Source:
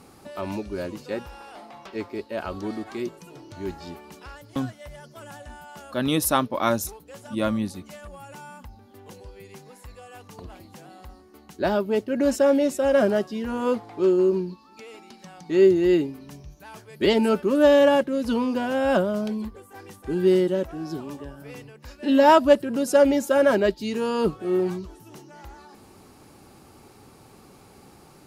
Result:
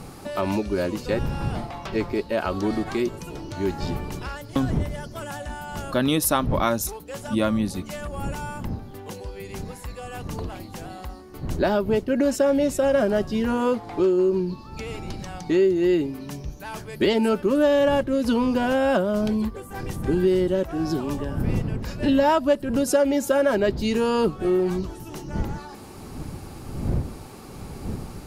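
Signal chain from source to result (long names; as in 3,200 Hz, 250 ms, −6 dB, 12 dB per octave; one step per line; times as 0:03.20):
wind on the microphone 170 Hz −39 dBFS
downward compressor 3 to 1, threshold −28 dBFS, peak gain reduction 13.5 dB
level +8 dB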